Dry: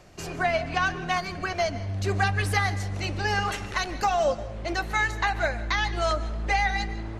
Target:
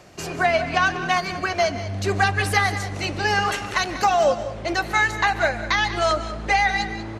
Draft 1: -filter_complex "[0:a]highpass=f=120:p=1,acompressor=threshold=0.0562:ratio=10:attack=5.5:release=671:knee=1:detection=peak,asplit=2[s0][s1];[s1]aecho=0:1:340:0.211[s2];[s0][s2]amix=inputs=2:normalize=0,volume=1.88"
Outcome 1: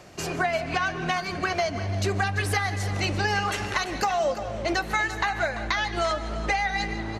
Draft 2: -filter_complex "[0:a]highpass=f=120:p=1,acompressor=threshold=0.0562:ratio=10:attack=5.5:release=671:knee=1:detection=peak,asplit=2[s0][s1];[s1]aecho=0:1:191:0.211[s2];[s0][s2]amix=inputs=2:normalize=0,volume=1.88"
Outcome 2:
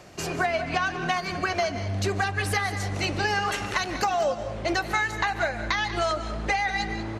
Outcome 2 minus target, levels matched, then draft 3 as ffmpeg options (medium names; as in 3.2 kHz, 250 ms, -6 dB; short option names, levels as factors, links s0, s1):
compression: peak gain reduction +8.5 dB
-filter_complex "[0:a]highpass=f=120:p=1,asplit=2[s0][s1];[s1]aecho=0:1:191:0.211[s2];[s0][s2]amix=inputs=2:normalize=0,volume=1.88"